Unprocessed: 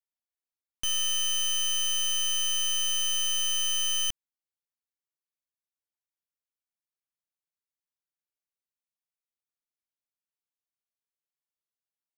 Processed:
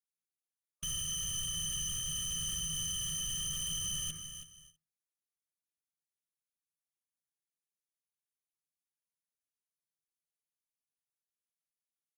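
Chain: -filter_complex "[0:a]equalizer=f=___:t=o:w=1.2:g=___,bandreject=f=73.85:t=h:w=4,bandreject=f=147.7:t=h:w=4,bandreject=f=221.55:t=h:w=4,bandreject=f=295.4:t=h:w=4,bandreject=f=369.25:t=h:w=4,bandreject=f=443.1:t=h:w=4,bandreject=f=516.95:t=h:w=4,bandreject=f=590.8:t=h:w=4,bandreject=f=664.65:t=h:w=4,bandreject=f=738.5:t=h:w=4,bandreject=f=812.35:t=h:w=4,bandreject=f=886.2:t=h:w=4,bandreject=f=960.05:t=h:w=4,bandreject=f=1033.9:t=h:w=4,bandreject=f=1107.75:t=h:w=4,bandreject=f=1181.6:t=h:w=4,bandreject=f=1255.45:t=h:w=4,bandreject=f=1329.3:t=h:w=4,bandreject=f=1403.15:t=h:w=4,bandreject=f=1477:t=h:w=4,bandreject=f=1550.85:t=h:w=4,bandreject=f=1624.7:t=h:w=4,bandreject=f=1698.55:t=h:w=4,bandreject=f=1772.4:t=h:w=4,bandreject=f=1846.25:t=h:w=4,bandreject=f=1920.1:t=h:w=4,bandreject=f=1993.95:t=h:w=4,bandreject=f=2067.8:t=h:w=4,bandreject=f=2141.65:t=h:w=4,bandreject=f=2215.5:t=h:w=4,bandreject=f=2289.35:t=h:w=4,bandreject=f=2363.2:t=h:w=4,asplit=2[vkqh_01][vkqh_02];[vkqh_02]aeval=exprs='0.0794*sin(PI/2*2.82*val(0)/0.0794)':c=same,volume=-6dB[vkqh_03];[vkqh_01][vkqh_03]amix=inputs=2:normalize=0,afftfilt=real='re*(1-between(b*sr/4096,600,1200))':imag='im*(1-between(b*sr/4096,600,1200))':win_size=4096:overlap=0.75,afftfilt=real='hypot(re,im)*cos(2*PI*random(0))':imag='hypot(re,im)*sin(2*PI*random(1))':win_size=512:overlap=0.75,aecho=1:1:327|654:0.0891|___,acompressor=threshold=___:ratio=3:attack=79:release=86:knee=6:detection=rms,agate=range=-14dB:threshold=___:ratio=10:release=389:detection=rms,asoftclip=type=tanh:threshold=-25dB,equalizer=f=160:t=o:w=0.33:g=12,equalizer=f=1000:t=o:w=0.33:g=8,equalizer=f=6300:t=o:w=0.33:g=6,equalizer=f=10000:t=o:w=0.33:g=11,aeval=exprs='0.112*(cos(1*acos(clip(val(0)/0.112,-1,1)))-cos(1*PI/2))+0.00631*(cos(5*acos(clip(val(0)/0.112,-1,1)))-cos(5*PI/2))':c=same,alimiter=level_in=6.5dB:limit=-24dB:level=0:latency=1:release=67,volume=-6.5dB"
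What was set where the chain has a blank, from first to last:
920, -12.5, 0.0232, -32dB, -54dB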